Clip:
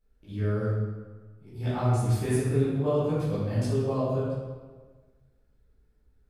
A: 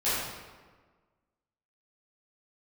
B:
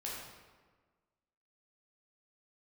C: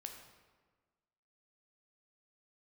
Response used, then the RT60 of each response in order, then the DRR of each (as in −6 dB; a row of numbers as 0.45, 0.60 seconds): A; 1.4, 1.4, 1.4 seconds; −13.5, −5.5, 3.0 decibels